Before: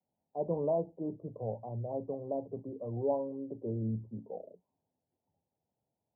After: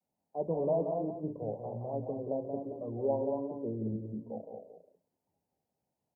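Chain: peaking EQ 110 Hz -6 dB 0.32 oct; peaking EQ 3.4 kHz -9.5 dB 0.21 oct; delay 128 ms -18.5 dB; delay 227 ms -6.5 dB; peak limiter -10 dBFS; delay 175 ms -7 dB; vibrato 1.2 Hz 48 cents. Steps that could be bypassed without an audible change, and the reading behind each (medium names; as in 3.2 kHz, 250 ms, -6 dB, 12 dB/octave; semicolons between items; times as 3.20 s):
peaking EQ 3.4 kHz: input has nothing above 1 kHz; peak limiter -10 dBFS: peak at its input -19.0 dBFS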